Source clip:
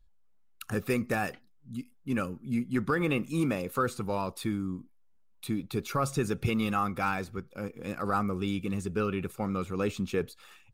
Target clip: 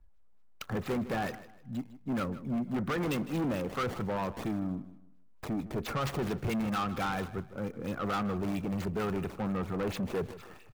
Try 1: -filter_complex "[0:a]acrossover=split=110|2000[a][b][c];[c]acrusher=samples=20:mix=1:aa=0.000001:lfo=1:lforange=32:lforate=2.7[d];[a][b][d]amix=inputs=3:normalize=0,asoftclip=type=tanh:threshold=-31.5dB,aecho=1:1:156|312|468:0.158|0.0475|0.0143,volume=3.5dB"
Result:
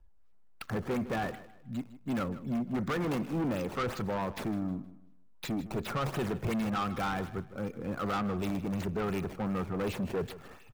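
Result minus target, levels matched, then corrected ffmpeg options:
decimation with a swept rate: distortion +8 dB
-filter_complex "[0:a]acrossover=split=110|2000[a][b][c];[c]acrusher=samples=20:mix=1:aa=0.000001:lfo=1:lforange=32:lforate=4.4[d];[a][b][d]amix=inputs=3:normalize=0,asoftclip=type=tanh:threshold=-31.5dB,aecho=1:1:156|312|468:0.158|0.0475|0.0143,volume=3.5dB"

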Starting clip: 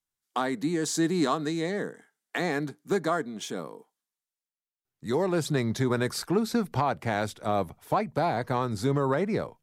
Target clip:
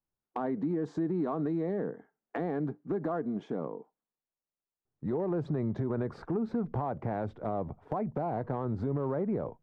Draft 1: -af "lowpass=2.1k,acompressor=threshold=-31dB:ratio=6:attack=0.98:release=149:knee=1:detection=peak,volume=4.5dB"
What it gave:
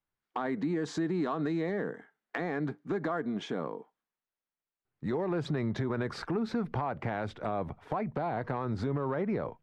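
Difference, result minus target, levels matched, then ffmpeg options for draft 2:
2000 Hz band +9.5 dB
-af "lowpass=810,acompressor=threshold=-31dB:ratio=6:attack=0.98:release=149:knee=1:detection=peak,volume=4.5dB"

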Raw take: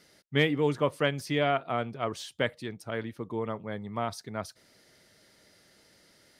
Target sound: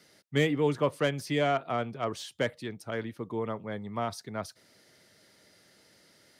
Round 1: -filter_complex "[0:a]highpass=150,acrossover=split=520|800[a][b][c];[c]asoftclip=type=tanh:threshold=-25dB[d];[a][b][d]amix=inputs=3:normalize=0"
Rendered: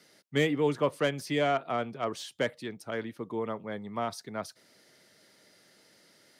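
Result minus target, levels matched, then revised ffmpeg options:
125 Hz band -3.0 dB
-filter_complex "[0:a]highpass=75,acrossover=split=520|800[a][b][c];[c]asoftclip=type=tanh:threshold=-25dB[d];[a][b][d]amix=inputs=3:normalize=0"

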